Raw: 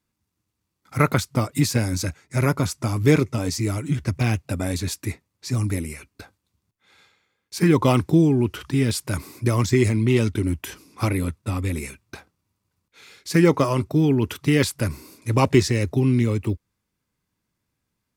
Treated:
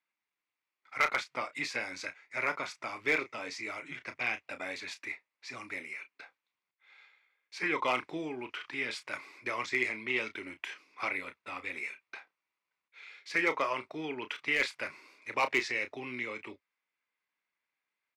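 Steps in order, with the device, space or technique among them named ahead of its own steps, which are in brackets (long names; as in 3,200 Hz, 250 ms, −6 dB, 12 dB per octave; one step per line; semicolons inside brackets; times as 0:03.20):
megaphone (band-pass filter 700–3,600 Hz; parametric band 2,200 Hz +9 dB 0.57 octaves; hard clipping −12.5 dBFS, distortion −19 dB; double-tracking delay 32 ms −10.5 dB)
level −6.5 dB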